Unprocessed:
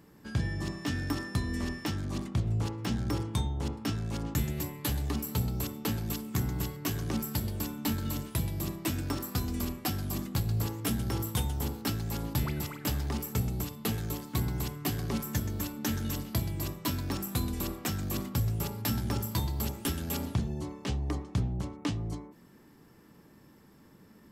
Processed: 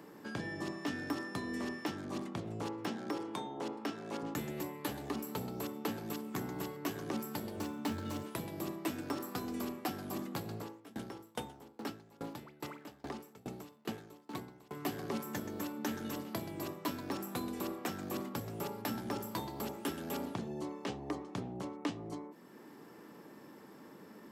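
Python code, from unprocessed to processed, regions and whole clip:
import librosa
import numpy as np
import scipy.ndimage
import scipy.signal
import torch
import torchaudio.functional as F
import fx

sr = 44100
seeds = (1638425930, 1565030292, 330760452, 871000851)

y = fx.chain(x, sr, fx.highpass(hz=230.0, slope=12),
    fx.high_shelf(hz=6600.0, db=-5.5),
    fx.band_squash(depth_pct=40), at=(2.89, 4.22))
y = fx.chain(y, sr, fx.median_filter(points=3),
    fx.peak_eq(hz=89.0, db=14.0, octaves=0.36), at=(7.56, 8.23))
y = fx.chain(y, sr, fx.zero_step(step_db=-45.5),
    fx.high_shelf(hz=11000.0, db=-9.5),
    fx.tremolo_decay(direction='decaying', hz=2.4, depth_db=30), at=(10.54, 14.75))
y = scipy.signal.sosfilt(scipy.signal.butter(2, 310.0, 'highpass', fs=sr, output='sos'), y)
y = fx.high_shelf(y, sr, hz=2100.0, db=-11.0)
y = fx.band_squash(y, sr, depth_pct=40)
y = y * 10.0 ** (1.5 / 20.0)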